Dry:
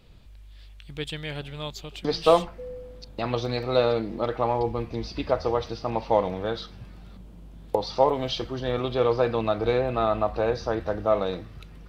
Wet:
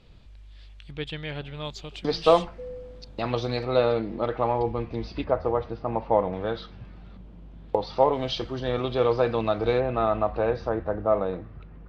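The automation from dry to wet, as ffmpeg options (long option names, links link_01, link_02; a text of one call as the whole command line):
ffmpeg -i in.wav -af "asetnsamples=nb_out_samples=441:pad=0,asendcmd='0.91 lowpass f 3700;1.65 lowpass f 6600;3.65 lowpass f 3500;5.24 lowpass f 1700;6.33 lowpass f 3300;8.12 lowpass f 6100;9.8 lowpass f 2800;10.69 lowpass f 1600',lowpass=6500" out.wav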